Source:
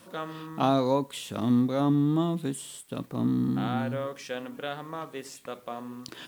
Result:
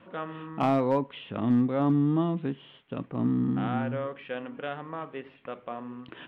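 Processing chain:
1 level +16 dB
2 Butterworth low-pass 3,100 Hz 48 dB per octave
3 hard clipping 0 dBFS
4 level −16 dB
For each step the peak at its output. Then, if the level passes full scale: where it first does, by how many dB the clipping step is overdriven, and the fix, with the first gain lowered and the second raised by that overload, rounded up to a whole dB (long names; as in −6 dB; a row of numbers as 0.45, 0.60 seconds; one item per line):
+5.0, +5.0, 0.0, −16.0 dBFS
step 1, 5.0 dB
step 1 +11 dB, step 4 −11 dB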